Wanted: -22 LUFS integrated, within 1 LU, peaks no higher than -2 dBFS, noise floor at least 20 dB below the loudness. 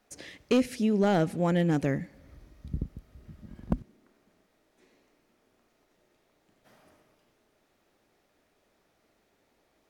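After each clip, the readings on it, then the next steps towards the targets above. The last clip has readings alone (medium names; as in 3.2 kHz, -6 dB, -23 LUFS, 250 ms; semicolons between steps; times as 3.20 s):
clipped samples 0.2%; clipping level -17.0 dBFS; loudness -28.5 LUFS; peak level -17.0 dBFS; loudness target -22.0 LUFS
-> clip repair -17 dBFS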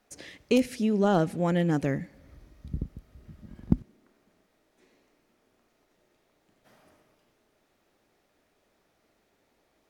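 clipped samples 0.0%; loudness -27.5 LUFS; peak level -8.0 dBFS; loudness target -22.0 LUFS
-> trim +5.5 dB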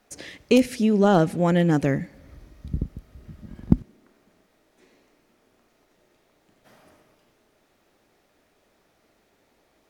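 loudness -22.0 LUFS; peak level -2.5 dBFS; noise floor -66 dBFS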